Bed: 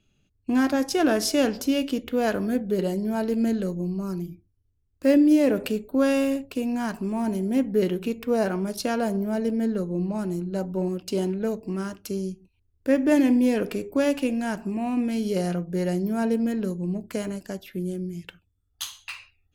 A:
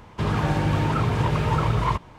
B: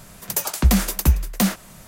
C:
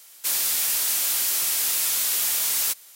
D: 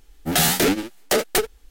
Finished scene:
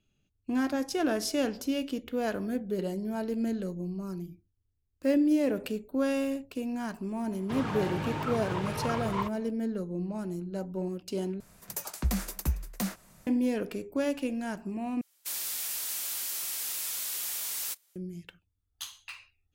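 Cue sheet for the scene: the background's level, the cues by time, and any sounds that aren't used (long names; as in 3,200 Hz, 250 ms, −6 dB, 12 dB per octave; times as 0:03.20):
bed −7 dB
0:07.31: mix in A −8 dB + high-pass filter 210 Hz 6 dB per octave
0:11.40: overwrite with B −13 dB + parametric band 3,200 Hz −3.5 dB 0.48 octaves
0:15.01: overwrite with C −11 dB + noise gate −36 dBFS, range −9 dB
not used: D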